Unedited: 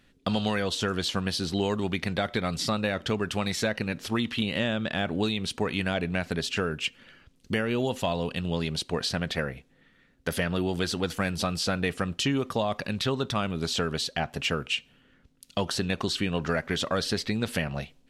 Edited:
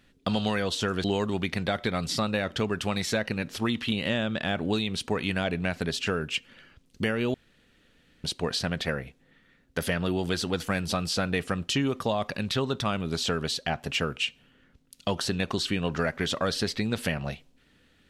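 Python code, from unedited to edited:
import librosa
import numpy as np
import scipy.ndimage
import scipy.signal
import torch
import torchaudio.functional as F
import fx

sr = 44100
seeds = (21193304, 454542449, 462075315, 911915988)

y = fx.edit(x, sr, fx.cut(start_s=1.04, length_s=0.5),
    fx.room_tone_fill(start_s=7.84, length_s=0.9), tone=tone)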